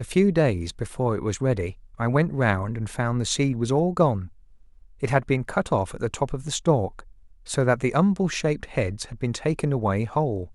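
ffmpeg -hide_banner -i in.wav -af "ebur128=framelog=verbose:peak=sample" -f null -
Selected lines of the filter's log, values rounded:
Integrated loudness:
  I:         -24.5 LUFS
  Threshold: -34.9 LUFS
Loudness range:
  LRA:         1.4 LU
  Threshold: -45.0 LUFS
  LRA low:   -25.6 LUFS
  LRA high:  -24.2 LUFS
Sample peak:
  Peak:       -6.3 dBFS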